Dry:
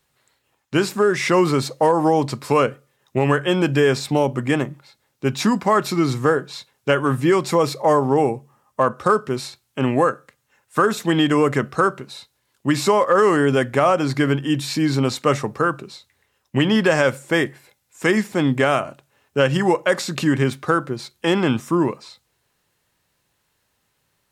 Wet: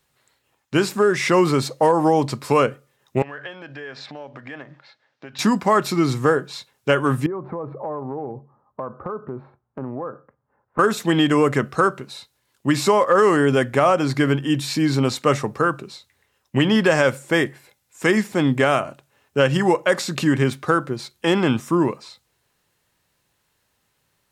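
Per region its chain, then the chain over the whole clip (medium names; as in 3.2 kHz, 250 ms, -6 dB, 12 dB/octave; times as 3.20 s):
3.22–5.39 s: block-companded coder 7-bit + compression 12:1, threshold -30 dBFS + cabinet simulation 190–4900 Hz, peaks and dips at 200 Hz -10 dB, 360 Hz -8 dB, 650 Hz +4 dB, 1.7 kHz +8 dB
7.26–10.79 s: low-pass 1.2 kHz 24 dB/octave + compression 4:1, threshold -27 dBFS
whole clip: none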